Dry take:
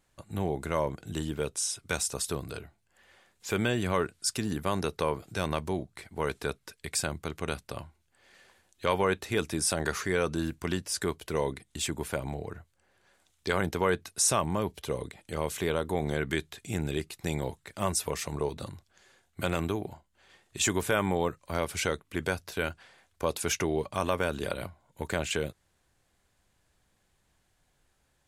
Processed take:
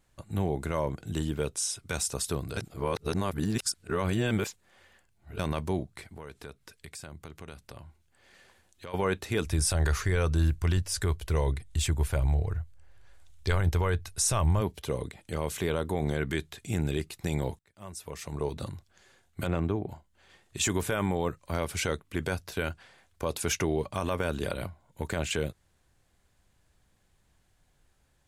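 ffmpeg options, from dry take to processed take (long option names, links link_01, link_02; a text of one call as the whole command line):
ffmpeg -i in.wav -filter_complex "[0:a]asplit=3[link_01][link_02][link_03];[link_01]afade=type=out:start_time=6.04:duration=0.02[link_04];[link_02]acompressor=threshold=-47dB:ratio=2.5:attack=3.2:release=140:knee=1:detection=peak,afade=type=in:start_time=6.04:duration=0.02,afade=type=out:start_time=8.93:duration=0.02[link_05];[link_03]afade=type=in:start_time=8.93:duration=0.02[link_06];[link_04][link_05][link_06]amix=inputs=3:normalize=0,asplit=3[link_07][link_08][link_09];[link_07]afade=type=out:start_time=9.45:duration=0.02[link_10];[link_08]asubboost=boost=10.5:cutoff=68,afade=type=in:start_time=9.45:duration=0.02,afade=type=out:start_time=14.6:duration=0.02[link_11];[link_09]afade=type=in:start_time=14.6:duration=0.02[link_12];[link_10][link_11][link_12]amix=inputs=3:normalize=0,asettb=1/sr,asplit=3[link_13][link_14][link_15];[link_13]atrim=end=19.474[link_16];[link_14]atrim=start=19.47:end=19.89,asetpts=PTS-STARTPTS,afade=type=in:duration=0.004:curve=qsin,afade=type=out:start_time=0.416:duration=0.004:curve=qsin,lowpass=frequency=1200:poles=1[link_17];[link_15]atrim=start=19.886[link_18];[link_16][link_17]acrossfade=duration=0.004:curve1=hsin:curve2=qsin[link_19];[link_19][link_18]acrossfade=duration=0.004:curve1=qsin:curve2=hsin,asplit=4[link_20][link_21][link_22][link_23];[link_20]atrim=end=2.572[link_24];[link_21]atrim=start=2.568:end=5.392,asetpts=PTS-STARTPTS,areverse[link_25];[link_22]atrim=start=5.388:end=17.59,asetpts=PTS-STARTPTS,afade=type=out:start_time=12.198:duration=0.004:curve=hsin:silence=0.0841395[link_26];[link_23]atrim=start=17.59,asetpts=PTS-STARTPTS,afade=type=in:duration=0.97:curve=qua:silence=0.0841395[link_27];[link_24][link_25]acrossfade=duration=0.004:curve1=hsin:curve2=hsin[link_28];[link_26][link_27]concat=n=2:v=0:a=1[link_29];[link_28][link_29]acrossfade=duration=0.004:curve1=hsin:curve2=hsin,lowshelf=frequency=170:gain=6,alimiter=limit=-17dB:level=0:latency=1:release=30" out.wav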